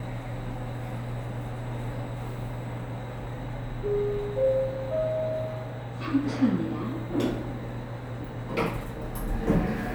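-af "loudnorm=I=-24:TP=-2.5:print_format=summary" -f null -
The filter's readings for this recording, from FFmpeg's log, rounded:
Input Integrated:    -30.8 LUFS
Input True Peak:     -11.8 dBTP
Input LRA:             5.6 LU
Input Threshold:     -40.8 LUFS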